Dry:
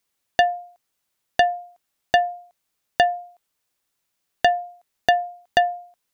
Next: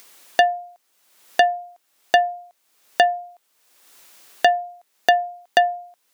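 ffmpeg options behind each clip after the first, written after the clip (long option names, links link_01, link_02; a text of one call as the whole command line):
ffmpeg -i in.wav -filter_complex "[0:a]highpass=290,asplit=2[link_01][link_02];[link_02]acompressor=mode=upward:threshold=-19dB:ratio=2.5,volume=-2.5dB[link_03];[link_01][link_03]amix=inputs=2:normalize=0,volume=-3dB" out.wav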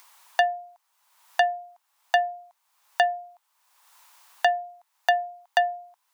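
ffmpeg -i in.wav -af "highpass=frequency=940:width_type=q:width=4.2,volume=-7dB" out.wav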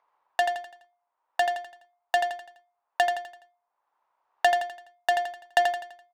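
ffmpeg -i in.wav -af "adynamicsmooth=sensitivity=2:basefreq=620,tremolo=f=1.1:d=0.34,aecho=1:1:84|168|252|336|420:0.501|0.216|0.0927|0.0398|0.0171" out.wav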